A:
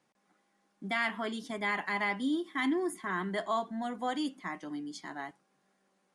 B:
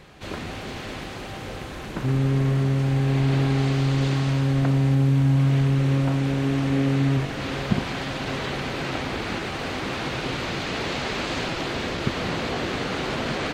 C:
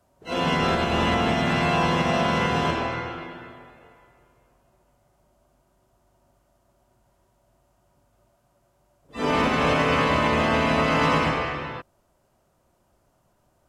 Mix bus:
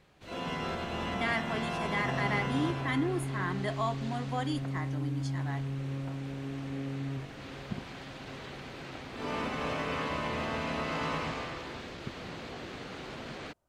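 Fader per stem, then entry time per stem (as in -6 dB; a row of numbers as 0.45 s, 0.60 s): -1.0 dB, -15.0 dB, -13.0 dB; 0.30 s, 0.00 s, 0.00 s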